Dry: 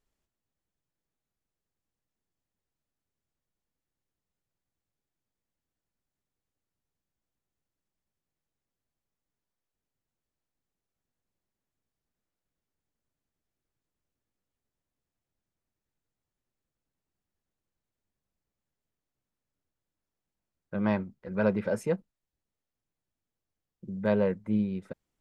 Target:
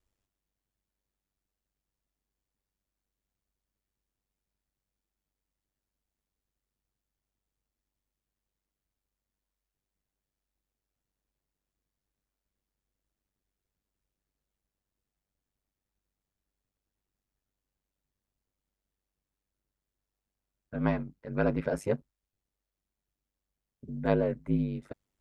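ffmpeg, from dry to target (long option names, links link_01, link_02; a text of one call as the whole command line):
ffmpeg -i in.wav -af "aeval=exprs='val(0)*sin(2*PI*49*n/s)':channel_layout=same,volume=2dB" out.wav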